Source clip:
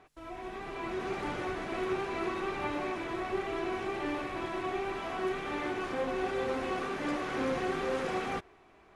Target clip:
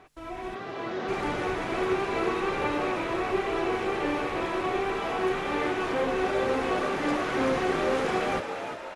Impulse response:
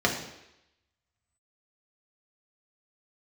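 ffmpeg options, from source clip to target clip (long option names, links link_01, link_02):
-filter_complex "[0:a]asplit=3[link_01][link_02][link_03];[link_01]afade=type=out:start_time=0.54:duration=0.02[link_04];[link_02]highpass=140,equalizer=frequency=370:width_type=q:width=4:gain=-4,equalizer=frequency=560:width_type=q:width=4:gain=6,equalizer=frequency=900:width_type=q:width=4:gain=-8,equalizer=frequency=2400:width_type=q:width=4:gain=-7,lowpass=frequency=6000:width=0.5412,lowpass=frequency=6000:width=1.3066,afade=type=in:start_time=0.54:duration=0.02,afade=type=out:start_time=1.07:duration=0.02[link_05];[link_03]afade=type=in:start_time=1.07:duration=0.02[link_06];[link_04][link_05][link_06]amix=inputs=3:normalize=0,asplit=7[link_07][link_08][link_09][link_10][link_11][link_12][link_13];[link_08]adelay=351,afreqshift=80,volume=-8dB[link_14];[link_09]adelay=702,afreqshift=160,volume=-13.4dB[link_15];[link_10]adelay=1053,afreqshift=240,volume=-18.7dB[link_16];[link_11]adelay=1404,afreqshift=320,volume=-24.1dB[link_17];[link_12]adelay=1755,afreqshift=400,volume=-29.4dB[link_18];[link_13]adelay=2106,afreqshift=480,volume=-34.8dB[link_19];[link_07][link_14][link_15][link_16][link_17][link_18][link_19]amix=inputs=7:normalize=0,volume=5.5dB"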